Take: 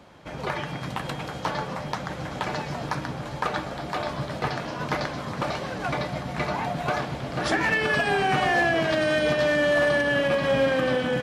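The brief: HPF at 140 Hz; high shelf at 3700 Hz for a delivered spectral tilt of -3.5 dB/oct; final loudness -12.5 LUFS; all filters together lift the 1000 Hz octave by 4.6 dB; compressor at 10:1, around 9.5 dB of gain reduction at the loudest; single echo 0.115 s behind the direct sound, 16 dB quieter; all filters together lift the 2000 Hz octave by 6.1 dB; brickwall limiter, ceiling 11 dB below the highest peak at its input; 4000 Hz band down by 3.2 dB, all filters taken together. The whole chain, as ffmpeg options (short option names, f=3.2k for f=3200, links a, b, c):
-af "highpass=140,equalizer=f=1k:t=o:g=5,equalizer=f=2k:t=o:g=8,highshelf=f=3.7k:g=-5,equalizer=f=4k:t=o:g=-6,acompressor=threshold=-24dB:ratio=10,alimiter=limit=-21dB:level=0:latency=1,aecho=1:1:115:0.158,volume=17.5dB"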